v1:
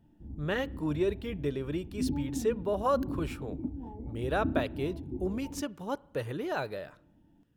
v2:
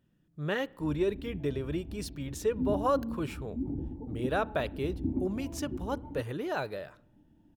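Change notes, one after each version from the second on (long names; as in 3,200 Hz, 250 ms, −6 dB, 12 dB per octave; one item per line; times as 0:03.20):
background: entry +0.60 s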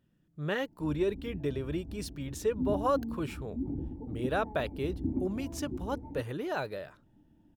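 reverb: off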